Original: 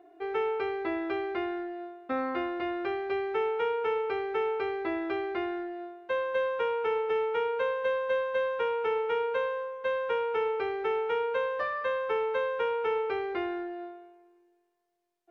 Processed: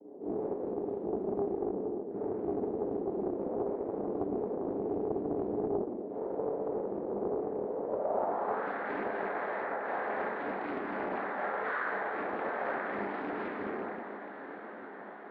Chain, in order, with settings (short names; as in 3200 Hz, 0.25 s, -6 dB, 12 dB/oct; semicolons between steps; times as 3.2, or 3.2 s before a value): limiter -29.5 dBFS, peak gain reduction 10 dB; power-law curve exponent 0.7; flange 1.6 Hz, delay 4.9 ms, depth 2.8 ms, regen -51%; noise vocoder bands 6; low-pass sweep 440 Hz -> 1700 Hz, 7.78–8.69; diffused feedback echo 1.108 s, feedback 70%, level -11.5 dB; reverb RT60 0.75 s, pre-delay 22 ms, DRR -6.5 dB; Doppler distortion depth 0.46 ms; gain -7 dB